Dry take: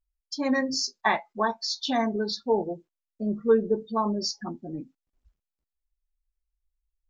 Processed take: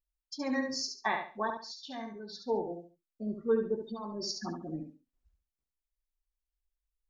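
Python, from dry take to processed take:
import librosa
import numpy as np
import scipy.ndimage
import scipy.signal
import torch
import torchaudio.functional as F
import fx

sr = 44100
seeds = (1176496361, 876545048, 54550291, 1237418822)

y = fx.comb_fb(x, sr, f0_hz=190.0, decay_s=0.17, harmonics='odd', damping=0.0, mix_pct=70, at=(1.5, 2.35))
y = fx.over_compress(y, sr, threshold_db=-31.0, ratio=-1.0, at=(3.82, 4.76), fade=0.02)
y = fx.echo_feedback(y, sr, ms=70, feedback_pct=27, wet_db=-6)
y = y * librosa.db_to_amplitude(-8.0)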